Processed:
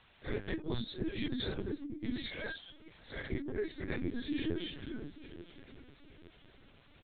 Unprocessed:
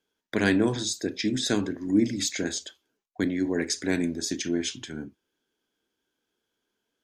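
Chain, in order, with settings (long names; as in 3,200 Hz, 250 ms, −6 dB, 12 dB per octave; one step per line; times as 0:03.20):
random phases in long frames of 200 ms
rotating-speaker cabinet horn 6.3 Hz, later 0.9 Hz, at 0:01.89
repeating echo 861 ms, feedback 43%, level −16.5 dB
reverb reduction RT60 0.57 s
background noise white −56 dBFS
compressor whose output falls as the input rises −31 dBFS, ratio −0.5
0:02.27–0:03.31: high-pass filter 450 Hz 24 dB per octave
linear-prediction vocoder at 8 kHz pitch kept
level −3.5 dB
WMA 128 kbit/s 48,000 Hz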